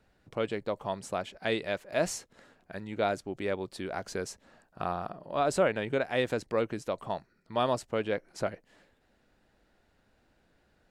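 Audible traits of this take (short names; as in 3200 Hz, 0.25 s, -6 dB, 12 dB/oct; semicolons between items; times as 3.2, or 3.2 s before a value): noise floor -69 dBFS; spectral tilt -4.5 dB/oct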